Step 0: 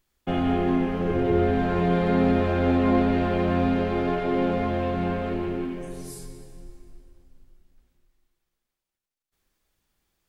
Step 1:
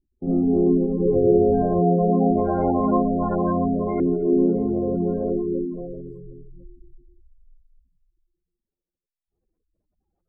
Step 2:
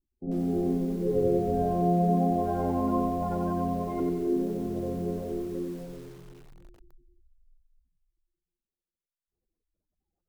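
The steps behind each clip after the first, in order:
reverse echo 52 ms -5.5 dB; spectral gate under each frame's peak -15 dB strong; LFO low-pass saw up 0.25 Hz 310–1600 Hz
bit-crushed delay 92 ms, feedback 55%, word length 7-bit, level -4.5 dB; trim -8.5 dB

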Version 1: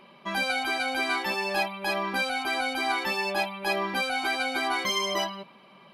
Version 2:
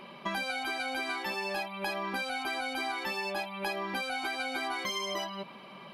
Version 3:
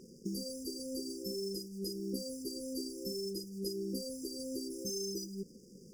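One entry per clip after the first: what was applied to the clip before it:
compression 12:1, threshold -36 dBFS, peak gain reduction 14.5 dB; trim +5 dB
crossover distortion -52.5 dBFS; brick-wall FIR band-stop 530–4700 Hz; trim +3.5 dB

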